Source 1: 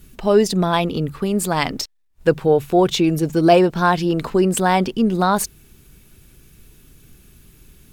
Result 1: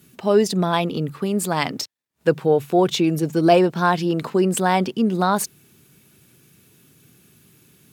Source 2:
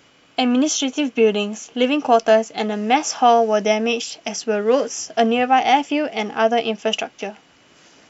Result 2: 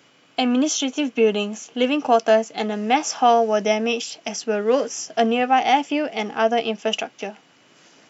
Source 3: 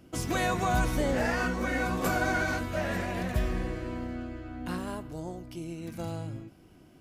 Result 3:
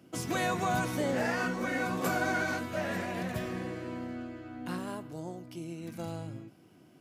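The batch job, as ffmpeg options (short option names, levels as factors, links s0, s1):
-af "highpass=f=110:w=0.5412,highpass=f=110:w=1.3066,volume=0.794"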